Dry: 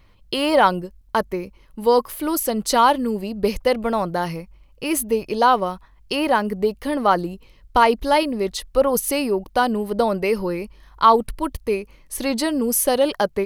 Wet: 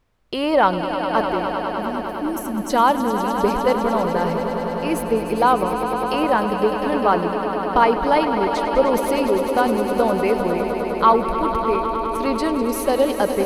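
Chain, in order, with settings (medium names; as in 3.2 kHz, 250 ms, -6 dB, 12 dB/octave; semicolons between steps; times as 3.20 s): spectral replace 1.72–2.68 s, 330–5300 Hz before; added noise pink -53 dBFS; treble shelf 3.8 kHz -12 dB; gate -38 dBFS, range -15 dB; on a send: echo with a slow build-up 101 ms, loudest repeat 5, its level -11 dB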